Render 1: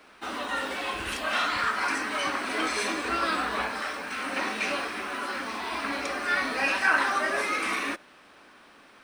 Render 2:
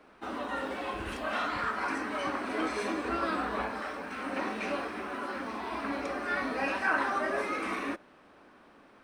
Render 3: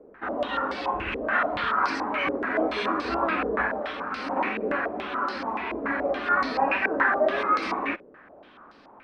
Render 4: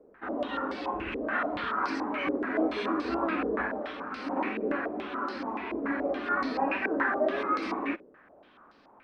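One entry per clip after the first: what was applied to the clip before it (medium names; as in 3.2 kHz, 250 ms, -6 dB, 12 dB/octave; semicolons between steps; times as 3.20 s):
tilt shelf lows +7 dB, about 1.5 kHz; trim -6 dB
step-sequenced low-pass 7 Hz 470–4700 Hz; trim +3 dB
dynamic bell 300 Hz, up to +8 dB, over -44 dBFS, Q 1.3; trim -6.5 dB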